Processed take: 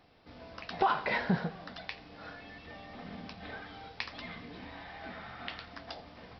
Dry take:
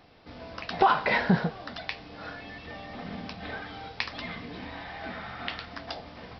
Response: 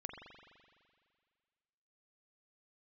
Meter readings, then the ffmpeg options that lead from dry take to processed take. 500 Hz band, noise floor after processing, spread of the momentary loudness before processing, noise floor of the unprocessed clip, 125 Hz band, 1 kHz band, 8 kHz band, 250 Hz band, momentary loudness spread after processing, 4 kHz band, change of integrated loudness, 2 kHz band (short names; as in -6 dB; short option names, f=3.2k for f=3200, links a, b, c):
-6.5 dB, -54 dBFS, 17 LU, -47 dBFS, -6.5 dB, -6.5 dB, n/a, -6.5 dB, 17 LU, -6.5 dB, -6.5 dB, -6.5 dB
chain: -filter_complex "[0:a]asplit=2[a][b];[1:a]atrim=start_sample=2205,adelay=86[c];[b][c]afir=irnorm=-1:irlink=0,volume=-16.5dB[d];[a][d]amix=inputs=2:normalize=0,volume=-6.5dB"